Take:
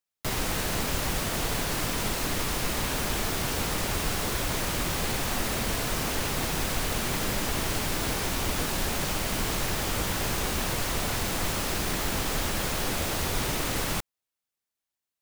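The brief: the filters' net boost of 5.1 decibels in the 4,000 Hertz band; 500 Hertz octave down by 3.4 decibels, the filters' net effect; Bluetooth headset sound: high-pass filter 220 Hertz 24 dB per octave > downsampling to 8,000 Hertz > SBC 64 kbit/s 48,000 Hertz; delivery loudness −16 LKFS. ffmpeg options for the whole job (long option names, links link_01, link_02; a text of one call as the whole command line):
ffmpeg -i in.wav -af "highpass=frequency=220:width=0.5412,highpass=frequency=220:width=1.3066,equalizer=frequency=500:width_type=o:gain=-4.5,equalizer=frequency=4000:width_type=o:gain=6.5,aresample=8000,aresample=44100,volume=14.5dB" -ar 48000 -c:a sbc -b:a 64k out.sbc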